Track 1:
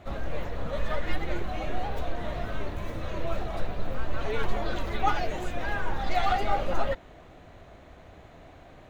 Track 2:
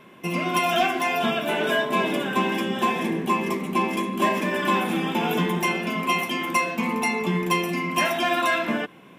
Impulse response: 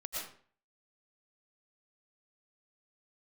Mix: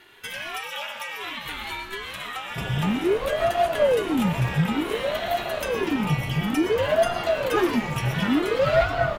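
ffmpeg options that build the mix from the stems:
-filter_complex "[0:a]adelay=2500,volume=1.33,asplit=2[s0][s1];[s1]volume=0.2[s2];[1:a]highpass=1200,acompressor=threshold=0.02:ratio=6,volume=1.41,asplit=2[s3][s4];[s4]volume=0.596[s5];[2:a]atrim=start_sample=2205[s6];[s2][s5]amix=inputs=2:normalize=0[s7];[s7][s6]afir=irnorm=-1:irlink=0[s8];[s0][s3][s8]amix=inputs=3:normalize=0,aeval=exprs='val(0)*sin(2*PI*410*n/s+410*0.7/0.56*sin(2*PI*0.56*n/s))':c=same"

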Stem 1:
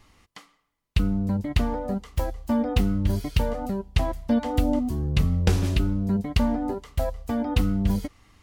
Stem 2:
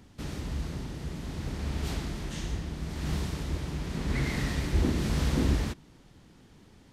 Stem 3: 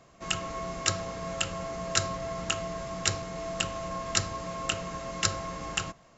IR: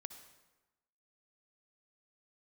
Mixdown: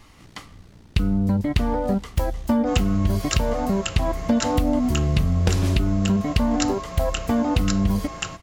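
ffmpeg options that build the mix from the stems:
-filter_complex "[0:a]acontrast=80,volume=1[s0];[1:a]acontrast=68,aeval=exprs='val(0)*sin(2*PI*30*n/s)':c=same,volume=0.158[s1];[2:a]adelay=2450,volume=1.19[s2];[s0][s1][s2]amix=inputs=3:normalize=0,acompressor=threshold=0.158:ratio=6"

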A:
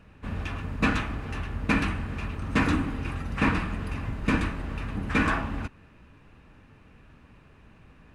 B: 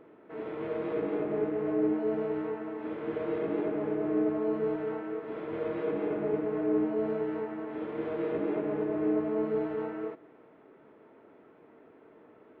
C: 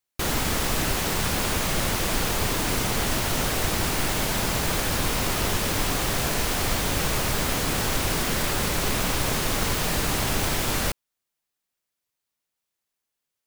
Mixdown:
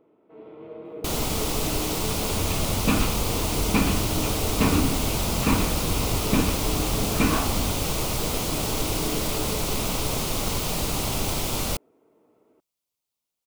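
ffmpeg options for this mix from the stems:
-filter_complex "[0:a]adelay=2050,volume=1.33[s0];[1:a]volume=0.501[s1];[2:a]adelay=850,volume=0.891[s2];[s0][s1][s2]amix=inputs=3:normalize=0,equalizer=f=1700:w=2.8:g=-13"

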